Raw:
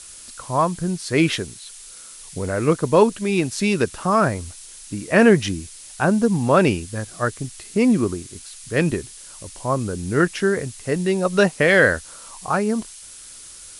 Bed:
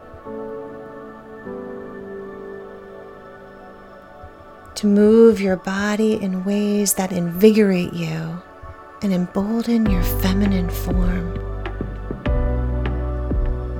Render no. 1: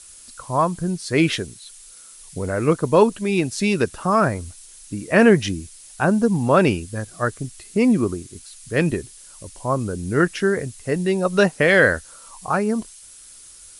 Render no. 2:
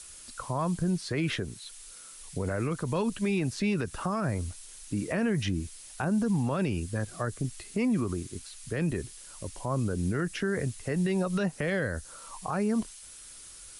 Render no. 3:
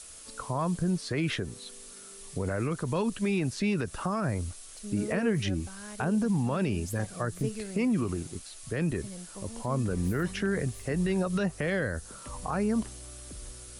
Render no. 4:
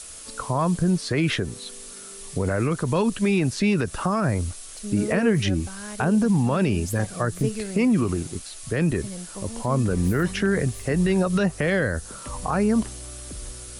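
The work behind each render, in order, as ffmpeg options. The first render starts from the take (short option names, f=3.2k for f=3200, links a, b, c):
-af "afftdn=nr=6:nf=-41"
-filter_complex "[0:a]acrossover=split=200|850|1900|4000[a][b][c][d][e];[a]acompressor=threshold=-24dB:ratio=4[f];[b]acompressor=threshold=-28dB:ratio=4[g];[c]acompressor=threshold=-34dB:ratio=4[h];[d]acompressor=threshold=-40dB:ratio=4[i];[e]acompressor=threshold=-46dB:ratio=4[j];[f][g][h][i][j]amix=inputs=5:normalize=0,alimiter=limit=-20.5dB:level=0:latency=1:release=50"
-filter_complex "[1:a]volume=-24dB[a];[0:a][a]amix=inputs=2:normalize=0"
-af "volume=7dB"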